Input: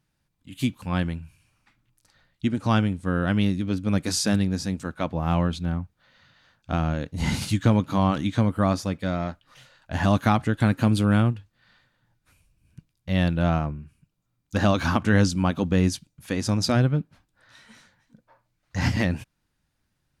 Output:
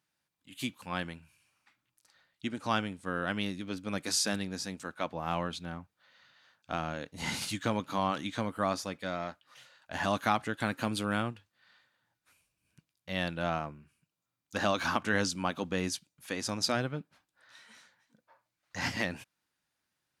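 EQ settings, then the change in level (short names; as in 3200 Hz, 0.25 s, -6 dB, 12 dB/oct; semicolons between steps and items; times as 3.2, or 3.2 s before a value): HPF 630 Hz 6 dB/oct; -3.0 dB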